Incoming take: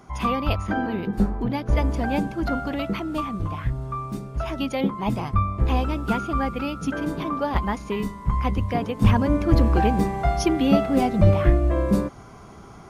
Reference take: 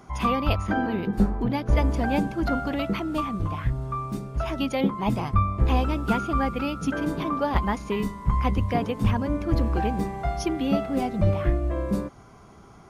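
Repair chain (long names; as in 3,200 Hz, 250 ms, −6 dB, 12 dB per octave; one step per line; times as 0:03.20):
level 0 dB, from 0:09.02 −5.5 dB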